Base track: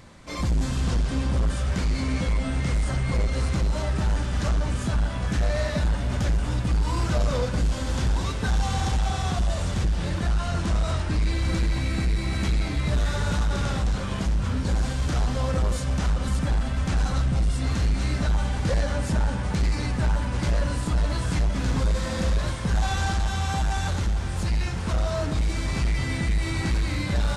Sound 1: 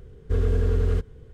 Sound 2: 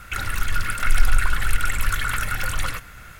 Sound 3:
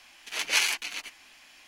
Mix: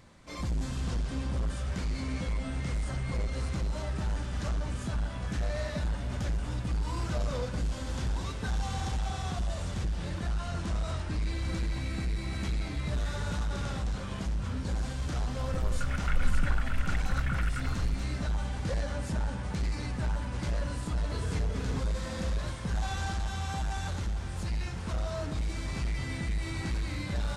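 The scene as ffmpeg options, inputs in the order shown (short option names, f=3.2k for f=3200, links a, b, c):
-filter_complex "[0:a]volume=-8dB[a];[2:a]afwtdn=0.0562[b];[1:a]highpass=f=76:w=0.5412,highpass=f=76:w=1.3066[c];[b]atrim=end=3.19,asetpts=PTS-STARTPTS,volume=-11dB,afade=t=in:d=0.004:c=hsin,afade=t=out:st=3.186:d=0.004:c=hsin,adelay=15250[d];[c]atrim=end=1.33,asetpts=PTS-STARTPTS,volume=-13.5dB,afade=t=in:d=0.004:c=hsin,afade=t=out:st=1.326:d=0.004:c=hsin,adelay=20800[e];[a][d][e]amix=inputs=3:normalize=0"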